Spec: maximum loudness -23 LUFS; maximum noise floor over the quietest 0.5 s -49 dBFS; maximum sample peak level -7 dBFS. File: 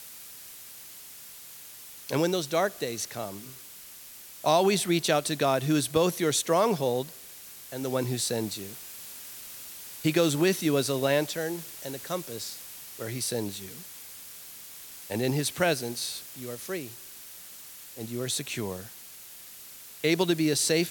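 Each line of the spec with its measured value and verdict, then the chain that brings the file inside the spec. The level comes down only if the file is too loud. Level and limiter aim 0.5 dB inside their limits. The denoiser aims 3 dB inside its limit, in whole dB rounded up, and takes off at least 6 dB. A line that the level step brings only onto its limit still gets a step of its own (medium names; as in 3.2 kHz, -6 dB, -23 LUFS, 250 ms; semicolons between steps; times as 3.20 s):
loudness -28.0 LUFS: pass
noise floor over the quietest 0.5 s -47 dBFS: fail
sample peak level -9.5 dBFS: pass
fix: noise reduction 6 dB, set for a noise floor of -47 dBFS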